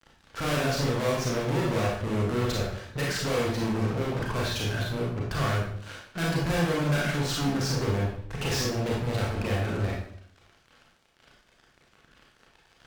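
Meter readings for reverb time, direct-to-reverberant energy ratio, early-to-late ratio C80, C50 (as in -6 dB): 0.65 s, -4.0 dB, 5.5 dB, 1.5 dB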